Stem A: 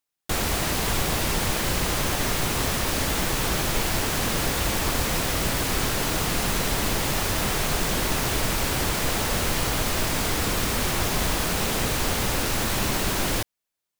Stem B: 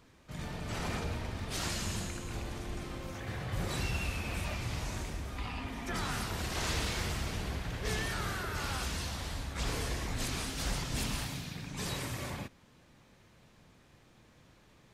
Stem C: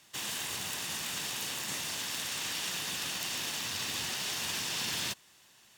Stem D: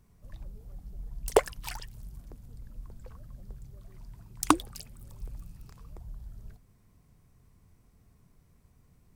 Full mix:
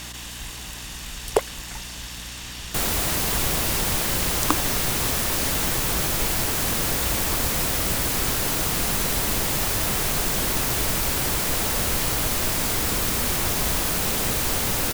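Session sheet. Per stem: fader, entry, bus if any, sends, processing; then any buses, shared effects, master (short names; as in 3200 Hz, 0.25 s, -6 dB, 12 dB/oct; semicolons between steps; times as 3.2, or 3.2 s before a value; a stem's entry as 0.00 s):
-1.5 dB, 2.45 s, no send, high shelf 7300 Hz +8.5 dB
-13.5 dB, 1.70 s, no send, dry
-3.5 dB, 0.00 s, no send, fast leveller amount 100%
+2.5 dB, 0.00 s, no send, beating tremolo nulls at 4.5 Hz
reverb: off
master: hum 60 Hz, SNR 18 dB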